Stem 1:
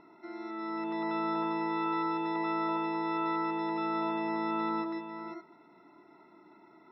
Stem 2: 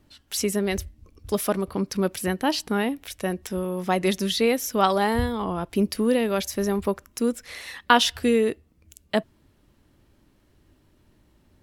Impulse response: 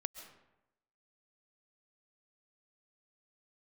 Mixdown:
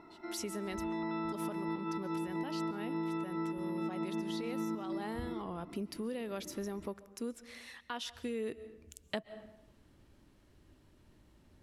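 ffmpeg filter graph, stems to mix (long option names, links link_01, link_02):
-filter_complex "[0:a]asubboost=boost=9:cutoff=250,volume=1.5dB[link_01];[1:a]lowpass=12000,alimiter=limit=-15dB:level=0:latency=1:release=471,volume=-6.5dB,afade=type=in:start_time=8.34:duration=0.21:silence=0.334965,asplit=3[link_02][link_03][link_04];[link_03]volume=-4.5dB[link_05];[link_04]apad=whole_len=305122[link_06];[link_01][link_06]sidechaincompress=threshold=-48dB:ratio=8:attack=16:release=117[link_07];[2:a]atrim=start_sample=2205[link_08];[link_05][link_08]afir=irnorm=-1:irlink=0[link_09];[link_07][link_02][link_09]amix=inputs=3:normalize=0,acompressor=threshold=-34dB:ratio=6"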